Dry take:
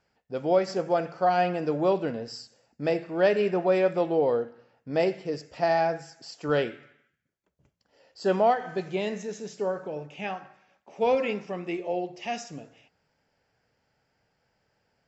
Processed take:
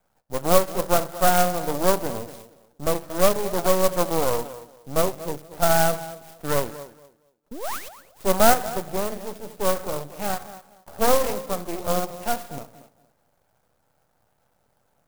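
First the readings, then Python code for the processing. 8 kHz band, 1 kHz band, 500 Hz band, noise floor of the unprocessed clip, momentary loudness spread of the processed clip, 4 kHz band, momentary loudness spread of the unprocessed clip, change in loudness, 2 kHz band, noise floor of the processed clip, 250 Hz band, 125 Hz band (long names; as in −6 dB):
can't be measured, +4.5 dB, +1.5 dB, −76 dBFS, 16 LU, +8.5 dB, 13 LU, +3.5 dB, +4.0 dB, −68 dBFS, +1.5 dB, +5.0 dB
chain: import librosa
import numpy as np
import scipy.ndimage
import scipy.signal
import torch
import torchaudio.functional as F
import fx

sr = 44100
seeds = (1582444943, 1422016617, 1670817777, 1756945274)

p1 = fx.spec_paint(x, sr, seeds[0], shape='rise', start_s=7.51, length_s=0.38, low_hz=210.0, high_hz=3600.0, level_db=-33.0)
p2 = fx.low_shelf(p1, sr, hz=250.0, db=9.0)
p3 = fx.rider(p2, sr, range_db=4, speed_s=2.0)
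p4 = p2 + F.gain(torch.from_numpy(p3), 1.0).numpy()
p5 = fx.band_shelf(p4, sr, hz=870.0, db=9.5, octaves=1.7)
p6 = np.maximum(p5, 0.0)
p7 = p6 + fx.echo_tape(p6, sr, ms=232, feedback_pct=25, wet_db=-13.0, lp_hz=1400.0, drive_db=-1.0, wow_cents=11, dry=0)
p8 = fx.clock_jitter(p7, sr, seeds[1], jitter_ms=0.082)
y = F.gain(torch.from_numpy(p8), -7.5).numpy()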